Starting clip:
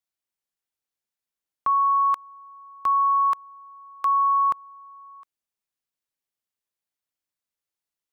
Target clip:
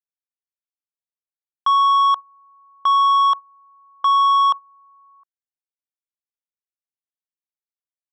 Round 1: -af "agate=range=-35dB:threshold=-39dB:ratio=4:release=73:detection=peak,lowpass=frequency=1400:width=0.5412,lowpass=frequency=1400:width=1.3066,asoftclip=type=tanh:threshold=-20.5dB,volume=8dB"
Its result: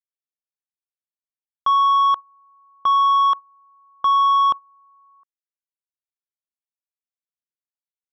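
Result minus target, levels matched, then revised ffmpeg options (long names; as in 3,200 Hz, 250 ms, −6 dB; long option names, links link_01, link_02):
500 Hz band +5.5 dB
-af "agate=range=-35dB:threshold=-39dB:ratio=4:release=73:detection=peak,lowpass=frequency=1400:width=0.5412,lowpass=frequency=1400:width=1.3066,lowshelf=frequency=590:width_type=q:width=1.5:gain=-11,asoftclip=type=tanh:threshold=-20.5dB,volume=8dB"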